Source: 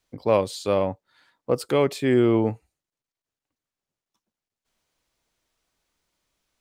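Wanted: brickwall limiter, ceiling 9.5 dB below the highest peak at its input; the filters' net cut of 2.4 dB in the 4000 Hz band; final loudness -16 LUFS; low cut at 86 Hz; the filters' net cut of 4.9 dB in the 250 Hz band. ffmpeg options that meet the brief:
-af "highpass=86,equalizer=f=250:t=o:g=-7,equalizer=f=4k:t=o:g=-3,volume=13.5dB,alimiter=limit=-4dB:level=0:latency=1"

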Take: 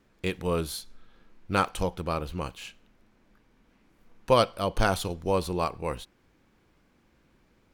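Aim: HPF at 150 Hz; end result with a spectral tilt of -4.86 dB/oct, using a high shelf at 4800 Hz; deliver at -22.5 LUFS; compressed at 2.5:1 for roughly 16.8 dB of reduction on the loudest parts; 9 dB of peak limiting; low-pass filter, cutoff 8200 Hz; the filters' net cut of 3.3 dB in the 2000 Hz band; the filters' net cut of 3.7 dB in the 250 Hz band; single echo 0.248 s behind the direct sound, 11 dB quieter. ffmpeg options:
-af "highpass=150,lowpass=8.2k,equalizer=f=250:t=o:g=-4,equalizer=f=2k:t=o:g=-4,highshelf=f=4.8k:g=-5.5,acompressor=threshold=-43dB:ratio=2.5,alimiter=level_in=7.5dB:limit=-24dB:level=0:latency=1,volume=-7.5dB,aecho=1:1:248:0.282,volume=24dB"

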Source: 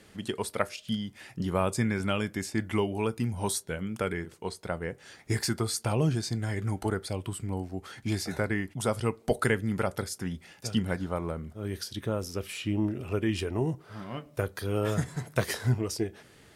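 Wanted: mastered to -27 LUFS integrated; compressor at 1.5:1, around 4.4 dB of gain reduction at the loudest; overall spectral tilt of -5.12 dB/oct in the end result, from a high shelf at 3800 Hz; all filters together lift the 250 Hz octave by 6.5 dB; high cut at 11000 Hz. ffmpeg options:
-af "lowpass=11k,equalizer=f=250:t=o:g=8.5,highshelf=f=3.8k:g=6.5,acompressor=threshold=-29dB:ratio=1.5,volume=3.5dB"

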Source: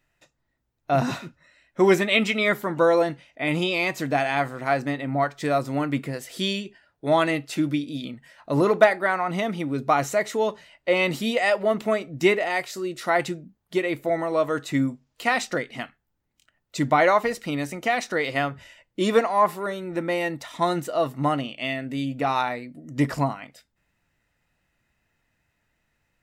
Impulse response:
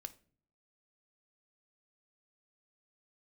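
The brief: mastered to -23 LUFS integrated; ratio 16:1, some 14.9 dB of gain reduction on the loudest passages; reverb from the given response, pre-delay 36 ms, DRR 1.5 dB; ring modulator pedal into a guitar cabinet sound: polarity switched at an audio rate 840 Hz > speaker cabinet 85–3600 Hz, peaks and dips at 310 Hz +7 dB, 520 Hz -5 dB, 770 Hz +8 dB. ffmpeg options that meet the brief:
-filter_complex "[0:a]acompressor=threshold=-25dB:ratio=16,asplit=2[a][b];[1:a]atrim=start_sample=2205,adelay=36[c];[b][c]afir=irnorm=-1:irlink=0,volume=3dB[d];[a][d]amix=inputs=2:normalize=0,aeval=exprs='val(0)*sgn(sin(2*PI*840*n/s))':c=same,highpass=85,equalizer=f=310:t=q:w=4:g=7,equalizer=f=520:t=q:w=4:g=-5,equalizer=f=770:t=q:w=4:g=8,lowpass=f=3.6k:w=0.5412,lowpass=f=3.6k:w=1.3066,volume=5dB"

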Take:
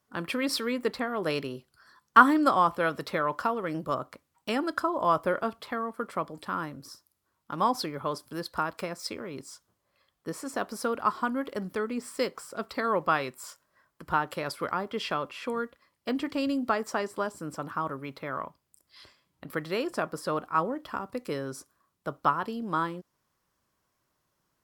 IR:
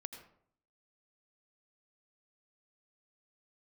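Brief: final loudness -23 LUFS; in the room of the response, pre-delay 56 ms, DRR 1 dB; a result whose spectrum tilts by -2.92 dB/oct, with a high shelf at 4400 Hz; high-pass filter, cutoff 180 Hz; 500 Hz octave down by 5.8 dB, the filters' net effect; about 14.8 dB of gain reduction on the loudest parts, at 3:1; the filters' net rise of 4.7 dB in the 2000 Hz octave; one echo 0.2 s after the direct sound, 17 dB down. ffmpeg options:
-filter_complex "[0:a]highpass=180,equalizer=f=500:t=o:g=-7.5,equalizer=f=2k:t=o:g=7,highshelf=f=4.4k:g=4,acompressor=threshold=-29dB:ratio=3,aecho=1:1:200:0.141,asplit=2[a][b];[1:a]atrim=start_sample=2205,adelay=56[c];[b][c]afir=irnorm=-1:irlink=0,volume=2.5dB[d];[a][d]amix=inputs=2:normalize=0,volume=9dB"

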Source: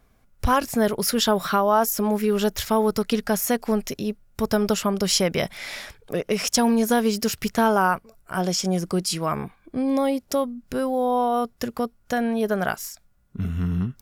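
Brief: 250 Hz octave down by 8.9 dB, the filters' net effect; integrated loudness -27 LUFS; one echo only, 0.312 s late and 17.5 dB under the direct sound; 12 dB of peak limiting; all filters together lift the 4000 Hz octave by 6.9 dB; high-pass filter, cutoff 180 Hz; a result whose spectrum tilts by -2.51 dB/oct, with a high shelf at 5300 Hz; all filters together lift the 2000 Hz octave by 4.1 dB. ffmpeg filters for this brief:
-af "highpass=180,equalizer=f=250:t=o:g=-9,equalizer=f=2k:t=o:g=4,equalizer=f=4k:t=o:g=5,highshelf=f=5.3k:g=6.5,alimiter=limit=-12dB:level=0:latency=1,aecho=1:1:312:0.133,volume=-2dB"

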